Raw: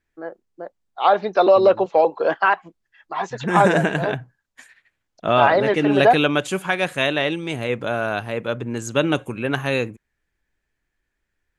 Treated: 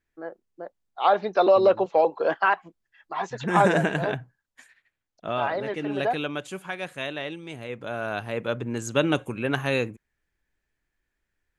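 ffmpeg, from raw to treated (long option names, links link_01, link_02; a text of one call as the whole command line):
ffmpeg -i in.wav -af "volume=4.5dB,afade=type=out:start_time=4.15:duration=1.27:silence=0.421697,afade=type=in:start_time=7.75:duration=0.68:silence=0.375837" out.wav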